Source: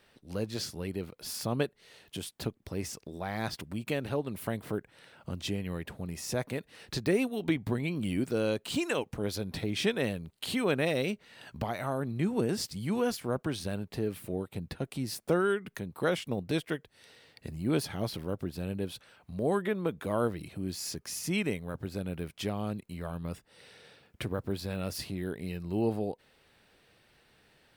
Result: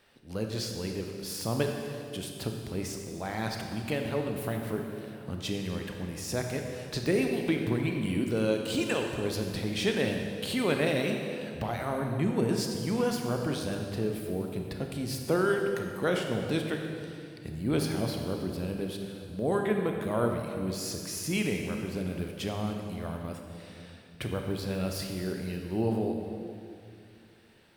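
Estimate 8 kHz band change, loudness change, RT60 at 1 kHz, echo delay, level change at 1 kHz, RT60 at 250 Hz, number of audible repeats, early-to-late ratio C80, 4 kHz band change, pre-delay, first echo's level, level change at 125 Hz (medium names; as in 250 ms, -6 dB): +1.5 dB, +2.0 dB, 2.2 s, no echo, +2.0 dB, 2.9 s, no echo, 4.5 dB, +1.5 dB, 26 ms, no echo, +2.5 dB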